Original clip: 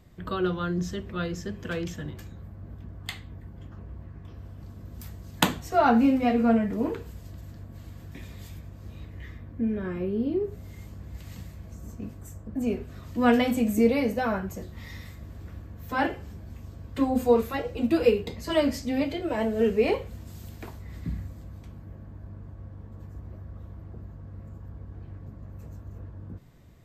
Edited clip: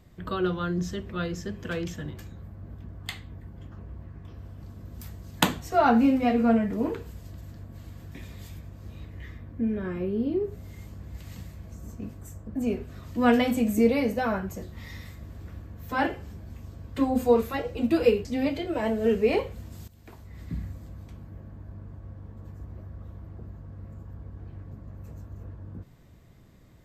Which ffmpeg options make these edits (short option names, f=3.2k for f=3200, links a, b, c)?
-filter_complex "[0:a]asplit=3[a][b][c];[a]atrim=end=18.252[d];[b]atrim=start=18.798:end=20.43,asetpts=PTS-STARTPTS,afade=t=out:st=1.628:d=0.004:c=hsin:silence=0.133352[e];[c]atrim=start=20.43,asetpts=PTS-STARTPTS,afade=t=in:d=1.01:c=qsin:silence=0.133352[f];[e][f]concat=n=2:v=0:a=1[g];[d][g]acrossfade=d=0.004:c1=hsin:c2=hsin"